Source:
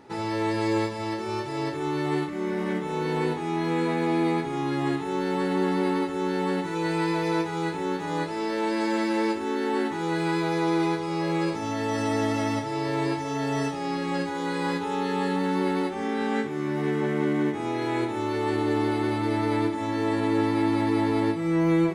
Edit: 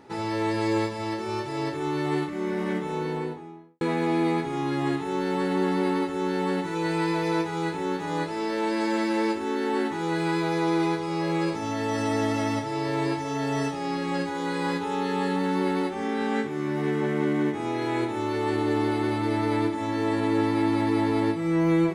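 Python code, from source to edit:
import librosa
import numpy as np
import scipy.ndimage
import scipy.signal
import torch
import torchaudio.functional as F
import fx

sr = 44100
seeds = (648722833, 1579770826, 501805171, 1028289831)

y = fx.studio_fade_out(x, sr, start_s=2.78, length_s=1.03)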